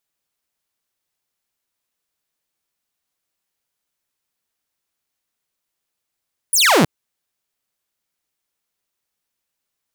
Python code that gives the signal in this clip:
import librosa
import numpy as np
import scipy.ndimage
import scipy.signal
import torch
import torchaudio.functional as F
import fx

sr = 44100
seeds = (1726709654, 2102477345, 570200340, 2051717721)

y = fx.laser_zap(sr, level_db=-8, start_hz=11000.0, end_hz=130.0, length_s=0.32, wave='saw')